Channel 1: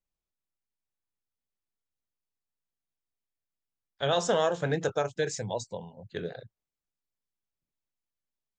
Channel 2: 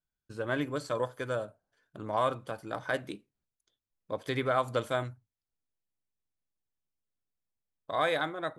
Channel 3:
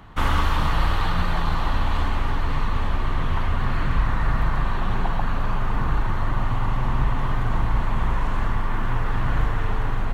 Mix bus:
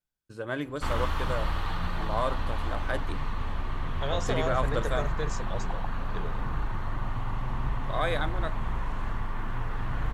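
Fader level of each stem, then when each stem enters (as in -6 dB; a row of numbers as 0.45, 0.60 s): -6.0, -1.0, -8.5 dB; 0.00, 0.00, 0.65 s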